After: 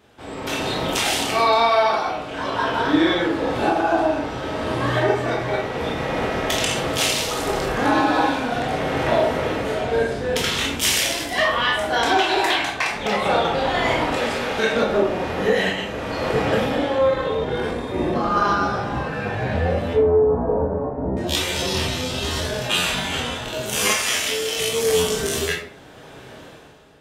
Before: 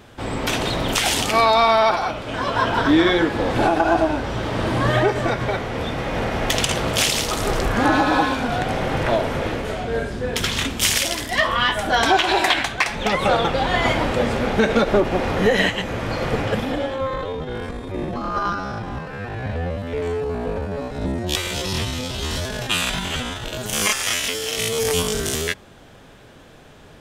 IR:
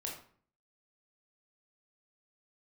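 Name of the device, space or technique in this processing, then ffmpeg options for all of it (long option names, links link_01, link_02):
far laptop microphone: -filter_complex "[0:a]asettb=1/sr,asplit=3[link_01][link_02][link_03];[link_01]atrim=end=14.124[link_04];[link_02]atrim=start=14.12:end=14.73,asetpts=PTS-STARTPTS,afade=type=in:duration=0.004:curve=qsin,afade=type=out:start_time=0.606:duration=0.004:curve=qsin,tiltshelf=frequency=970:gain=-5[link_05];[link_03]atrim=start=14.726[link_06];[link_04][link_05]acrossfade=duration=0.004:curve1=hsin:curve2=qsin[link_07];[link_07][link_06]acrossfade=duration=0.004:curve1=qsin:curve2=hsin,asettb=1/sr,asplit=3[link_08][link_09][link_10];[link_08]atrim=end=19.934[link_11];[link_09]atrim=start=19.93:end=21.17,asetpts=PTS-STARTPTS,afade=type=in:duration=0.004:curve=qsin,afade=type=out:start_time=1.236:duration=0.004:curve=qsin,lowpass=frequency=1100:width=0.5412,lowpass=frequency=1100:width=1.3066[link_12];[link_10]atrim=start=21.166[link_13];[link_11][link_12]acrossfade=duration=0.004:curve1=hsin:curve2=qsin[link_14];[link_14][link_13]acrossfade=duration=0.004:curve1=qsin:curve2=hsin[link_15];[1:a]atrim=start_sample=2205[link_16];[link_15][link_16]afir=irnorm=-1:irlink=0,highpass=frequency=140:poles=1,dynaudnorm=framelen=110:gausssize=11:maxgain=15dB,volume=-6dB"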